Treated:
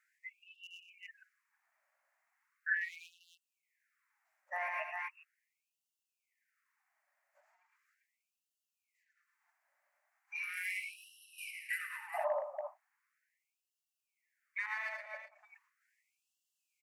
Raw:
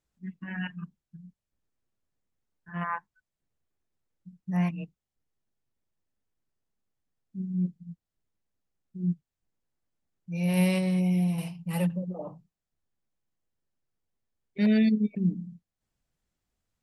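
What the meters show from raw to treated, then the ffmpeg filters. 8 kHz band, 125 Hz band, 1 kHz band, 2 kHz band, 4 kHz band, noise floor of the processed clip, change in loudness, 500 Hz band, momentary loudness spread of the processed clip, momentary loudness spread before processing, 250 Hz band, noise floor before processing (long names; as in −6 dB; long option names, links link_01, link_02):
−8.0 dB, below −40 dB, −3.5 dB, +2.5 dB, −9.0 dB, below −85 dBFS, −11.0 dB, −6.0 dB, 18 LU, 20 LU, below −40 dB, below −85 dBFS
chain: -filter_complex "[0:a]acrossover=split=270[link_01][link_02];[link_02]volume=29dB,asoftclip=hard,volume=-29dB[link_03];[link_01][link_03]amix=inputs=2:normalize=0,highshelf=frequency=2600:width_type=q:width=3:gain=-9,asplit=2[link_04][link_05];[link_05]aecho=0:1:72|107|125|190|225|393:0.266|0.335|0.188|0.106|0.1|0.178[link_06];[link_04][link_06]amix=inputs=2:normalize=0,acompressor=threshold=-31dB:ratio=6,alimiter=level_in=8dB:limit=-24dB:level=0:latency=1:release=79,volume=-8dB,afftfilt=real='re*gte(b*sr/1024,520*pow(2700/520,0.5+0.5*sin(2*PI*0.38*pts/sr)))':imag='im*gte(b*sr/1024,520*pow(2700/520,0.5+0.5*sin(2*PI*0.38*pts/sr)))':win_size=1024:overlap=0.75,volume=12.5dB"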